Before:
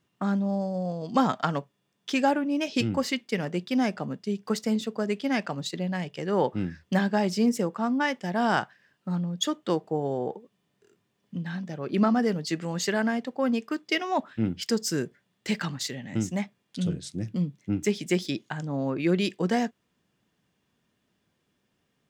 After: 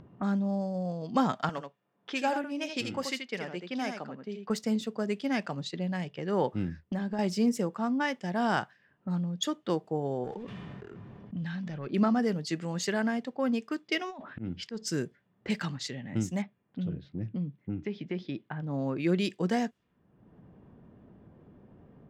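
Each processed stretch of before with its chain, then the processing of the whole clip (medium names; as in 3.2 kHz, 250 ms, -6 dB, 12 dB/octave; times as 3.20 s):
1.49–4.50 s: high-pass 530 Hz 6 dB/octave + delay 81 ms -6.5 dB
6.68–7.19 s: gate -53 dBFS, range -8 dB + tilt shelf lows +3.5 dB, about 910 Hz + compression 4:1, threshold -27 dBFS
10.24–11.87 s: peaking EQ 460 Hz -7.5 dB 2.8 oct + waveshaping leveller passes 1 + decay stretcher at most 24 dB/s
14.09–14.86 s: slow attack 252 ms + compressor with a negative ratio -35 dBFS
16.42–18.67 s: distance through air 290 m + compression 3:1, threshold -27 dBFS
whole clip: level-controlled noise filter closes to 750 Hz, open at -25.5 dBFS; bass shelf 120 Hz +5.5 dB; upward compressor, threshold -31 dBFS; trim -4 dB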